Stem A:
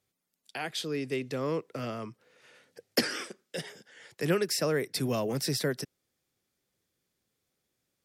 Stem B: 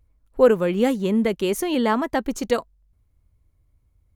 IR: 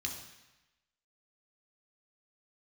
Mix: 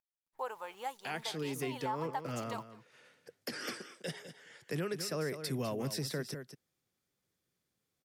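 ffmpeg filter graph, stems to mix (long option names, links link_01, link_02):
-filter_complex "[0:a]equalizer=frequency=1200:width=1.5:gain=2,adelay=500,volume=-4.5dB,asplit=2[link_01][link_02];[link_02]volume=-12dB[link_03];[1:a]highpass=frequency=870:width_type=q:width=6,highshelf=frequency=3400:gain=6.5,acrusher=bits=8:dc=4:mix=0:aa=0.000001,volume=-19.5dB,asplit=2[link_04][link_05];[link_05]volume=-23.5dB[link_06];[link_03][link_06]amix=inputs=2:normalize=0,aecho=0:1:203:1[link_07];[link_01][link_04][link_07]amix=inputs=3:normalize=0,equalizer=frequency=150:width=1.5:gain=3.5,alimiter=level_in=3dB:limit=-24dB:level=0:latency=1:release=212,volume=-3dB"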